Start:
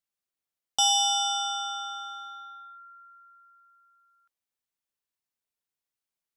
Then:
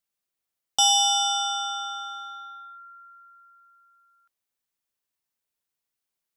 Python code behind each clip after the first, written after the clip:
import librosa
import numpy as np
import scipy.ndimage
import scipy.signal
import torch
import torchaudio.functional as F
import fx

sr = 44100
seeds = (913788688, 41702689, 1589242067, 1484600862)

y = fx.high_shelf(x, sr, hz=11000.0, db=3.0)
y = y * librosa.db_to_amplitude(3.0)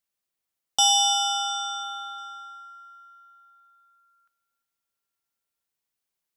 y = fx.echo_feedback(x, sr, ms=349, feedback_pct=50, wet_db=-19.0)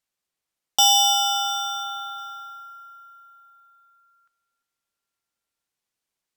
y = np.repeat(scipy.signal.resample_poly(x, 1, 2), 2)[:len(x)]
y = y * librosa.db_to_amplitude(3.0)